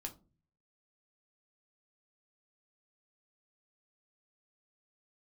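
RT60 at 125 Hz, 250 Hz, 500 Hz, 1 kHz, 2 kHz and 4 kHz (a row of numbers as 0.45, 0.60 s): 0.80, 0.55, 0.40, 0.30, 0.20, 0.20 s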